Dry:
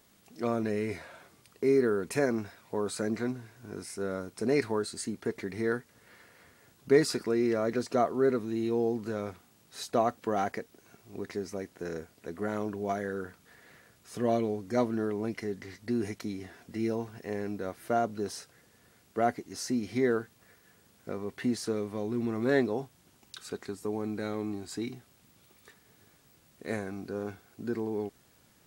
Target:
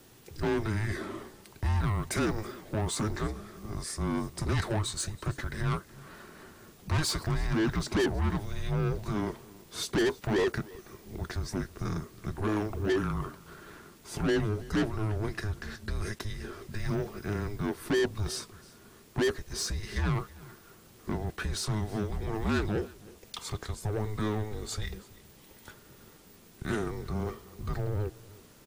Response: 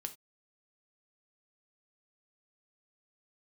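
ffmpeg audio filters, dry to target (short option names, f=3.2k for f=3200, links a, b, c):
-filter_complex "[0:a]equalizer=f=690:w=2.4:g=11,acrossover=split=400|1100|3300[a][b][c][d];[a]acompressor=threshold=-43dB:ratio=6[e];[e][b][c][d]amix=inputs=4:normalize=0,asoftclip=type=tanh:threshold=-30dB,aecho=1:1:325:0.0794,afreqshift=-320,volume=6dB"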